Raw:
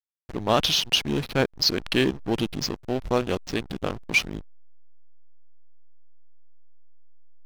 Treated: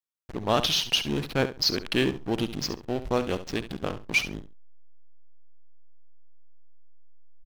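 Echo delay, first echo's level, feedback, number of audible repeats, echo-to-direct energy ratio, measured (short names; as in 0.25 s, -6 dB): 69 ms, -12.5 dB, 16%, 2, -12.5 dB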